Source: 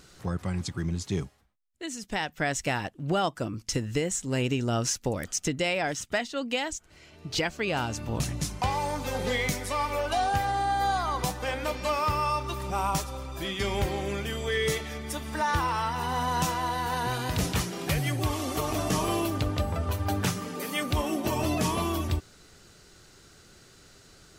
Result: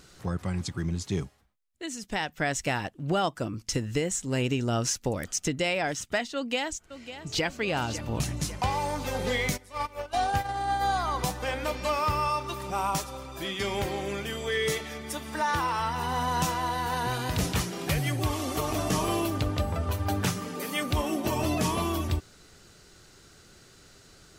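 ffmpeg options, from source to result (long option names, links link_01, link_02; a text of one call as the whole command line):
ffmpeg -i in.wav -filter_complex "[0:a]asplit=2[link_01][link_02];[link_02]afade=type=in:start_time=6.35:duration=0.01,afade=type=out:start_time=7.45:duration=0.01,aecho=0:1:550|1100|1650|2200|2750|3300|3850:0.237137|0.142282|0.0853695|0.0512217|0.030733|0.0184398|0.0110639[link_03];[link_01][link_03]amix=inputs=2:normalize=0,asplit=3[link_04][link_05][link_06];[link_04]afade=type=out:start_time=9.56:duration=0.02[link_07];[link_05]agate=range=-18dB:threshold=-28dB:ratio=16:release=100:detection=peak,afade=type=in:start_time=9.56:duration=0.02,afade=type=out:start_time=10.91:duration=0.02[link_08];[link_06]afade=type=in:start_time=10.91:duration=0.02[link_09];[link_07][link_08][link_09]amix=inputs=3:normalize=0,asettb=1/sr,asplit=3[link_10][link_11][link_12];[link_10]atrim=end=12.284[link_13];[link_11]atrim=start=12.28:end=15.8,asetpts=PTS-STARTPTS,afade=type=in:duration=0.004:curve=qsin,afade=type=out:start_time=3.516:duration=0.004:curve=qsin,highpass=frequency=140:poles=1[link_14];[link_12]atrim=start=15.796[link_15];[link_13][link_14]acrossfade=duration=0.004:curve1=hsin:curve2=qsin[link_16];[link_16][link_15]acrossfade=duration=0.004:curve1=qsin:curve2=hsin" out.wav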